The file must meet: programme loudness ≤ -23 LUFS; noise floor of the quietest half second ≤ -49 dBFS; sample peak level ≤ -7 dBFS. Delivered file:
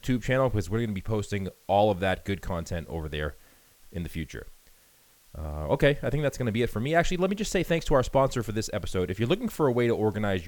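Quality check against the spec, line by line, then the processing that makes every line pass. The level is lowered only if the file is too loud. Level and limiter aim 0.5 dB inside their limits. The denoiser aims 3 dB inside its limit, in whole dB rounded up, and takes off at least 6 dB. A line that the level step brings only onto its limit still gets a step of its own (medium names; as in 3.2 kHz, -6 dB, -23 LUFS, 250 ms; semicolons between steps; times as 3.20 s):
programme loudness -27.5 LUFS: pass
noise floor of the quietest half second -60 dBFS: pass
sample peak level -8.5 dBFS: pass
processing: none needed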